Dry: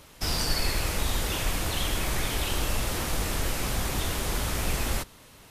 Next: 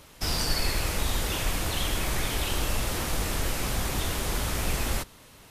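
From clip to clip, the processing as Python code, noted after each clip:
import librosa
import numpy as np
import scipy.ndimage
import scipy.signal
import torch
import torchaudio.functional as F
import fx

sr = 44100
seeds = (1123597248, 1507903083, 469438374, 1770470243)

y = x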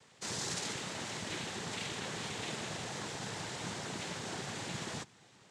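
y = fx.noise_vocoder(x, sr, seeds[0], bands=6)
y = y * librosa.db_to_amplitude(-8.0)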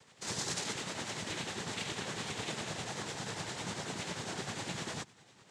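y = x * (1.0 - 0.48 / 2.0 + 0.48 / 2.0 * np.cos(2.0 * np.pi * 10.0 * (np.arange(len(x)) / sr)))
y = y * librosa.db_to_amplitude(3.0)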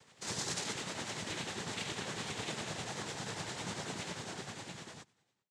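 y = fx.fade_out_tail(x, sr, length_s=1.61)
y = y * librosa.db_to_amplitude(-1.0)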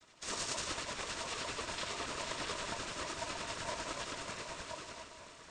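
y = fx.echo_diffused(x, sr, ms=905, feedback_pct=51, wet_db=-11.5)
y = fx.noise_vocoder(y, sr, seeds[1], bands=16)
y = y * np.sin(2.0 * np.pi * 800.0 * np.arange(len(y)) / sr)
y = y * librosa.db_to_amplitude(3.5)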